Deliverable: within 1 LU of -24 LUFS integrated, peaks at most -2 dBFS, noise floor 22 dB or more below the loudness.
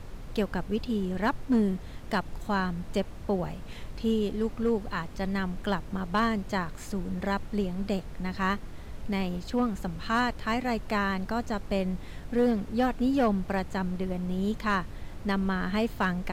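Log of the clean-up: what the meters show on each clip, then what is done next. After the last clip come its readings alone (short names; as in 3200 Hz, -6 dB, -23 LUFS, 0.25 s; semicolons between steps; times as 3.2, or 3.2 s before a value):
clipped 0.4%; flat tops at -18.0 dBFS; noise floor -42 dBFS; noise floor target -52 dBFS; loudness -30.0 LUFS; peak -18.0 dBFS; loudness target -24.0 LUFS
-> clip repair -18 dBFS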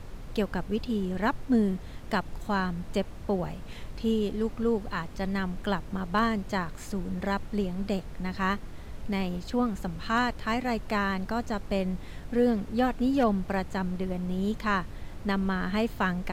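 clipped 0.0%; noise floor -42 dBFS; noise floor target -52 dBFS
-> noise print and reduce 10 dB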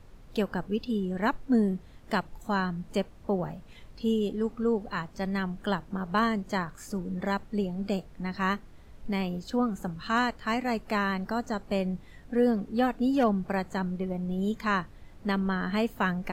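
noise floor -50 dBFS; noise floor target -52 dBFS
-> noise print and reduce 6 dB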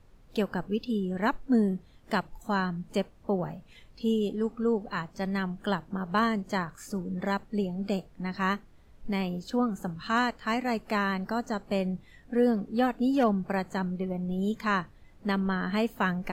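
noise floor -56 dBFS; loudness -30.0 LUFS; peak -13.5 dBFS; loudness target -24.0 LUFS
-> gain +6 dB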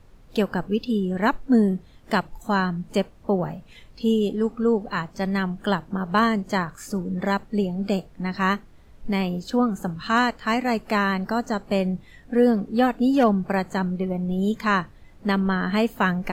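loudness -24.0 LUFS; peak -7.5 dBFS; noise floor -50 dBFS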